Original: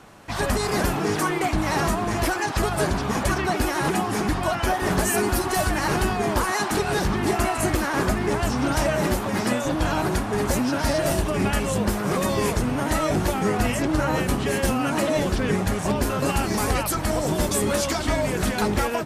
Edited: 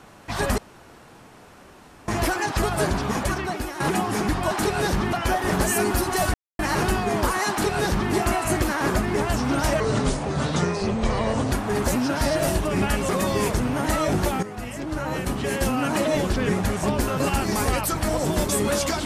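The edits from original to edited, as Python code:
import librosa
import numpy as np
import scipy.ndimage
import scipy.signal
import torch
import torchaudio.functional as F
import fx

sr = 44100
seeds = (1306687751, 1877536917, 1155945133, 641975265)

y = fx.edit(x, sr, fx.room_tone_fill(start_s=0.58, length_s=1.5),
    fx.fade_out_to(start_s=3.05, length_s=0.75, floor_db=-10.0),
    fx.insert_silence(at_s=5.72, length_s=0.25),
    fx.duplicate(start_s=6.63, length_s=0.62, to_s=4.51),
    fx.speed_span(start_s=8.93, length_s=1.22, speed=0.71),
    fx.cut(start_s=11.72, length_s=0.39),
    fx.fade_in_from(start_s=13.45, length_s=1.39, floor_db=-15.0), tone=tone)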